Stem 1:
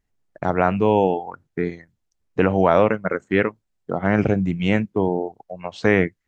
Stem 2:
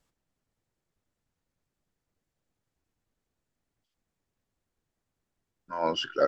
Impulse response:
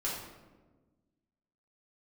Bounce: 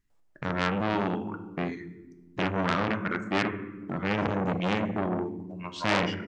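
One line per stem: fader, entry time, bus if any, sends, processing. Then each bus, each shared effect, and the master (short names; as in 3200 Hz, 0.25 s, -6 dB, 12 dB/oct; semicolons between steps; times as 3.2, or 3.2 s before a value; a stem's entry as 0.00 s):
-3.0 dB, 0.00 s, send -10.5 dB, band shelf 610 Hz -15 dB 1.1 oct
-7.0 dB, 0.10 s, send -18 dB, bell 720 Hz +11.5 dB 1.8 oct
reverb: on, RT60 1.3 s, pre-delay 5 ms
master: core saturation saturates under 2700 Hz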